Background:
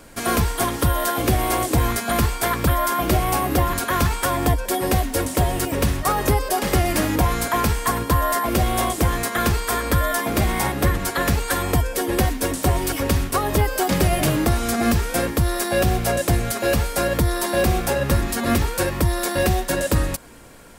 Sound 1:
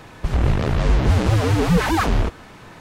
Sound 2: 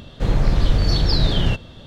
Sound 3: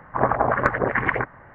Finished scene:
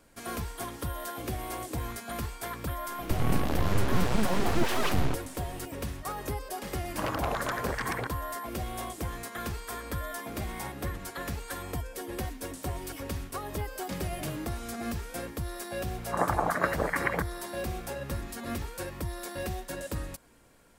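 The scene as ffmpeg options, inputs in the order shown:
-filter_complex "[3:a]asplit=2[s0][s1];[0:a]volume=0.168[s2];[1:a]aeval=exprs='abs(val(0))':c=same[s3];[s0]aeval=exprs='0.188*(abs(mod(val(0)/0.188+3,4)-2)-1)':c=same[s4];[s1]afreqshift=51[s5];[s3]atrim=end=2.8,asetpts=PTS-STARTPTS,volume=0.473,afade=t=in:d=0.004:c=hsin,afade=t=out:st=2.796:d=0.004:c=hsin,adelay=2860[s6];[s4]atrim=end=1.54,asetpts=PTS-STARTPTS,volume=0.335,afade=t=in:d=0.004:c=hsin,afade=t=out:st=1.536:d=0.004:c=hsin,adelay=6830[s7];[s5]atrim=end=1.54,asetpts=PTS-STARTPTS,volume=0.422,afade=t=in:d=0.004:c=hsin,afade=t=out:st=1.536:d=0.004:c=hsin,adelay=15980[s8];[s2][s6][s7][s8]amix=inputs=4:normalize=0"

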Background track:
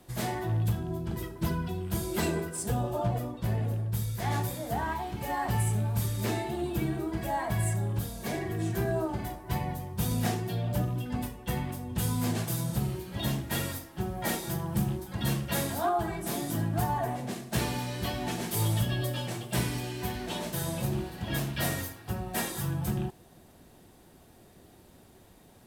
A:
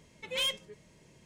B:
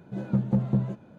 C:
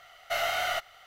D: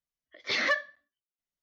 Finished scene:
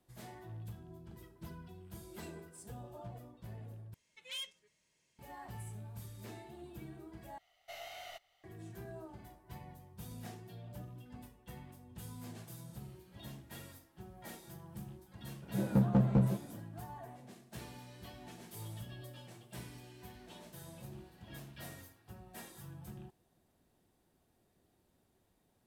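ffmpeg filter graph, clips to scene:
-filter_complex "[0:a]volume=0.119[s0];[1:a]tiltshelf=f=970:g=-8[s1];[3:a]equalizer=f=1400:t=o:w=0.49:g=-13[s2];[2:a]volume=11.2,asoftclip=hard,volume=0.0891[s3];[s0]asplit=3[s4][s5][s6];[s4]atrim=end=3.944[s7];[s1]atrim=end=1.25,asetpts=PTS-STARTPTS,volume=0.126[s8];[s5]atrim=start=5.186:end=7.384[s9];[s2]atrim=end=1.06,asetpts=PTS-STARTPTS,volume=0.141[s10];[s6]atrim=start=8.436[s11];[s3]atrim=end=1.18,asetpts=PTS-STARTPTS,volume=0.891,afade=t=in:d=0.004:c=hsin,afade=t=out:st=1.176:d=0.004:c=hsin,adelay=15420[s12];[s7][s8]acrossfade=d=0.004:c1=hsin:c2=hsin[s13];[s13][s9]acrossfade=d=0.004:c1=hsin:c2=hsin[s14];[s14][s10]acrossfade=d=0.004:c1=hsin:c2=hsin[s15];[s15][s11]acrossfade=d=0.004:c1=hsin:c2=hsin[s16];[s16][s12]amix=inputs=2:normalize=0"

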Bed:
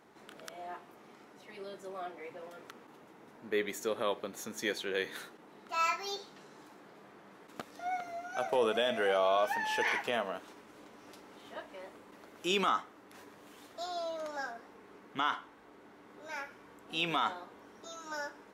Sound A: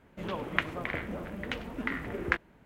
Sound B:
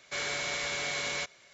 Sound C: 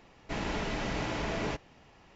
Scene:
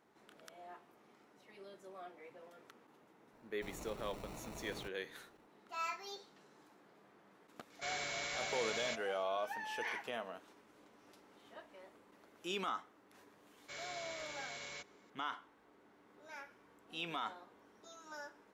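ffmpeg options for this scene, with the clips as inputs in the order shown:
-filter_complex "[2:a]asplit=2[s0][s1];[0:a]volume=0.335[s2];[3:a]acrusher=samples=27:mix=1:aa=0.000001,atrim=end=2.15,asetpts=PTS-STARTPTS,volume=0.15,afade=t=in:d=0.004:c=hsin,afade=t=out:st=2.146:d=0.004:c=hsin,adelay=3320[s3];[s0]atrim=end=1.53,asetpts=PTS-STARTPTS,volume=0.398,afade=t=in:d=0.004:c=hsin,afade=t=out:st=1.526:d=0.004:c=hsin,adelay=339570S[s4];[s1]atrim=end=1.53,asetpts=PTS-STARTPTS,volume=0.188,afade=t=in:d=0.004:c=hsin,afade=t=out:st=1.526:d=0.004:c=hsin,adelay=13570[s5];[s2][s3][s4][s5]amix=inputs=4:normalize=0"

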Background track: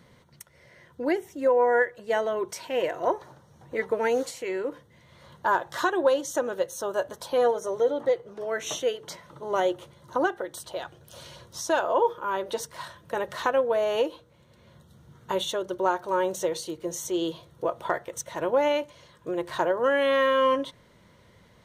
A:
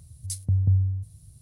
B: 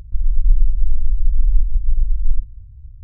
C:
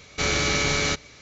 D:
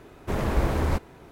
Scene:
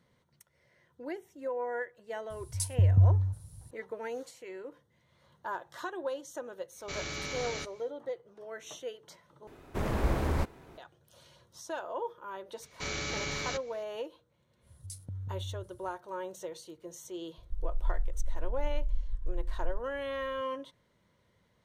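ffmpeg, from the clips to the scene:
-filter_complex "[1:a]asplit=2[s0][s1];[3:a]asplit=2[s2][s3];[0:a]volume=0.211[s4];[s1]acompressor=threshold=0.0447:ratio=6:attack=3.2:release=140:knee=1:detection=peak[s5];[s4]asplit=2[s6][s7];[s6]atrim=end=9.474[s8];[4:a]atrim=end=1.31,asetpts=PTS-STARTPTS,volume=0.562[s9];[s7]atrim=start=10.776[s10];[s0]atrim=end=1.41,asetpts=PTS-STARTPTS,volume=0.944,afade=t=in:d=0.004:c=hsin,afade=t=out:st=1.406:d=0.004:c=hsin,adelay=2300[s11];[s2]atrim=end=1.21,asetpts=PTS-STARTPTS,volume=0.178,afade=t=in:d=0.1,afade=t=out:st=1.11:d=0.1,adelay=6700[s12];[s3]atrim=end=1.21,asetpts=PTS-STARTPTS,volume=0.237,afade=t=in:d=0.004:c=hsin,afade=t=out:st=1.206:d=0.004:c=hsin,adelay=12620[s13];[s5]atrim=end=1.41,asetpts=PTS-STARTPTS,volume=0.316,afade=t=in:d=0.1,afade=t=out:st=1.31:d=0.1,adelay=643860S[s14];[2:a]atrim=end=3.03,asetpts=PTS-STARTPTS,volume=0.141,afade=t=in:d=0.004:c=hsin,afade=t=out:st=3.026:d=0.004:c=hsin,adelay=17380[s15];[s8][s9]acrossfade=d=0.004:c1=hsin:c2=hsin[s16];[s16][s10]acrossfade=d=0.004:c1=hsin:c2=hsin[s17];[s17][s11][s12][s13][s14][s15]amix=inputs=6:normalize=0"

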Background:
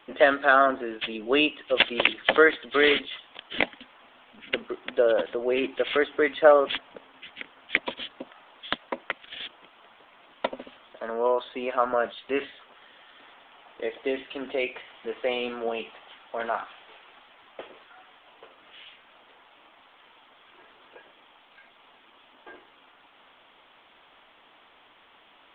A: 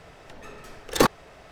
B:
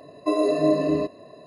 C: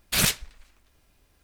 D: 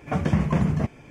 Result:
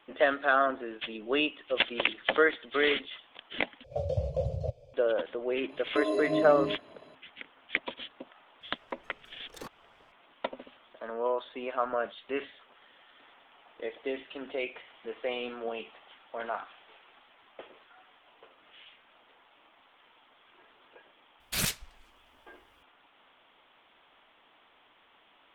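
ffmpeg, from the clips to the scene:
-filter_complex "[0:a]volume=0.501[s0];[4:a]firequalizer=gain_entry='entry(120,0);entry(190,-28);entry(340,-23);entry(530,13);entry(930,-21);entry(1800,-30);entry(2600,-14);entry(4000,0);entry(6100,-10);entry(9600,-14)':delay=0.05:min_phase=1[s1];[1:a]alimiter=limit=0.168:level=0:latency=1:release=355[s2];[s0]asplit=2[s3][s4];[s3]atrim=end=3.844[s5];[s1]atrim=end=1.1,asetpts=PTS-STARTPTS,volume=0.531[s6];[s4]atrim=start=4.936[s7];[2:a]atrim=end=1.46,asetpts=PTS-STARTPTS,volume=0.376,afade=t=in:d=0.004:c=hsin,afade=t=out:st=1.456:d=0.004:c=hsin,adelay=250929S[s8];[s2]atrim=end=1.51,asetpts=PTS-STARTPTS,volume=0.126,afade=t=in:d=0.004:c=hsin,afade=t=out:st=1.506:d=0.004:c=hsin,adelay=8610[s9];[3:a]atrim=end=1.43,asetpts=PTS-STARTPTS,volume=0.398,afade=t=in:d=0.004:c=hsin,afade=t=out:st=1.426:d=0.004:c=hsin,adelay=21400[s10];[s5][s6]acrossfade=d=0.004:c1=hsin:c2=hsin[s11];[s11][s7]acrossfade=d=0.004:c1=hsin:c2=hsin[s12];[s12][s8][s9][s10]amix=inputs=4:normalize=0"

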